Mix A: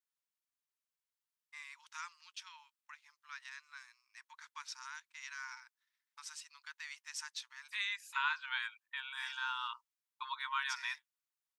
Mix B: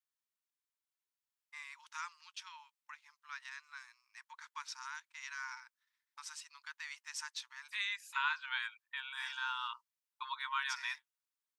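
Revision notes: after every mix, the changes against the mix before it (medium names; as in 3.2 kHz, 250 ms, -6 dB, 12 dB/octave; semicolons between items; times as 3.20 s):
first voice: remove high-pass 1.2 kHz 6 dB/octave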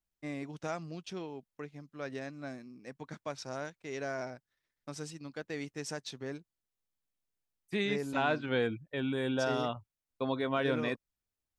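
first voice: entry -1.30 s; master: remove brick-wall FIR high-pass 870 Hz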